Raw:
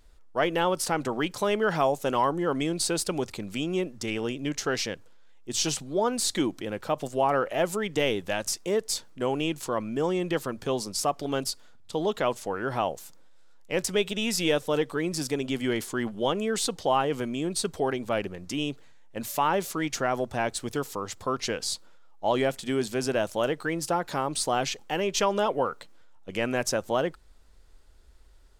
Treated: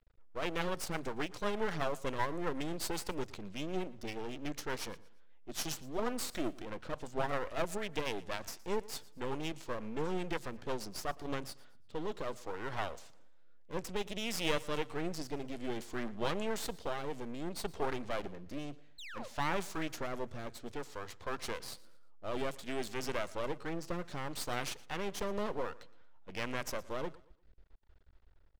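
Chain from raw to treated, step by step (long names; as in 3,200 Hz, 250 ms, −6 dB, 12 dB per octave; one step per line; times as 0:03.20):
low-pass that shuts in the quiet parts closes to 2,400 Hz, open at −21 dBFS
sound drawn into the spectrogram fall, 0:18.98–0:19.28, 470–4,300 Hz −37 dBFS
rotating-speaker cabinet horn 8 Hz, later 0.6 Hz, at 0:10.85
half-wave rectification
on a send: repeating echo 116 ms, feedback 34%, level −21 dB
on the sum: level −3 dB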